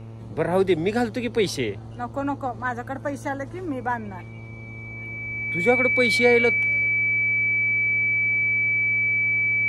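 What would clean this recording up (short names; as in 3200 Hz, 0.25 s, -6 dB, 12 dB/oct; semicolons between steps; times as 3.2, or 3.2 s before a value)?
de-hum 112.6 Hz, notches 12; notch 2300 Hz, Q 30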